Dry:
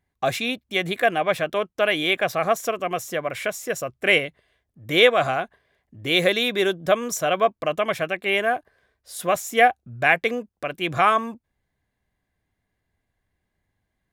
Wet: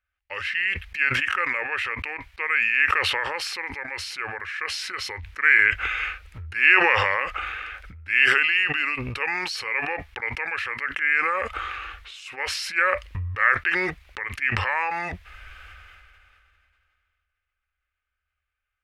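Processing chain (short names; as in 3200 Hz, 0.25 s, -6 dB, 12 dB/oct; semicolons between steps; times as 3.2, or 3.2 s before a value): EQ curve 110 Hz 0 dB, 180 Hz -28 dB, 1200 Hz -3 dB, 3000 Hz +14 dB, 10000 Hz -10 dB; varispeed -25%; sustainer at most 22 dB/s; gain -8.5 dB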